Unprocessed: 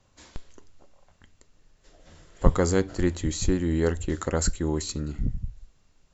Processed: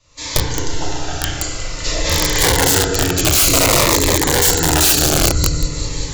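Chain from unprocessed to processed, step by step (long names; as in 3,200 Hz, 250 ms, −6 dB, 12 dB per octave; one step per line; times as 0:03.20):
camcorder AGC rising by 64 dB per second
low-pass filter 6,300 Hz 12 dB per octave
high-shelf EQ 2,300 Hz +10.5 dB
mains-hum notches 50/100/150/200/250/300/350/400/450/500 Hz
on a send: echo machine with several playback heads 188 ms, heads all three, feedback 65%, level −17 dB
on the sum: feedback delay network reverb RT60 1.9 s, low-frequency decay 0.9×, high-frequency decay 0.4×, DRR −4 dB
in parallel at −8 dB: hard clipping −9 dBFS, distortion −15 dB
on the sum: notch filter 760 Hz, Q 24
wrap-around overflow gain 5 dB
parametric band 220 Hz −11 dB 0.67 octaves
phaser whose notches keep moving one way falling 0.53 Hz
level −1 dB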